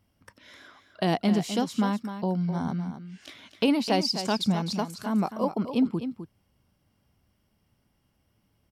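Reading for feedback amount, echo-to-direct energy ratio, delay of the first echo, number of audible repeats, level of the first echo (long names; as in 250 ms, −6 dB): repeats not evenly spaced, −10.0 dB, 256 ms, 1, −10.0 dB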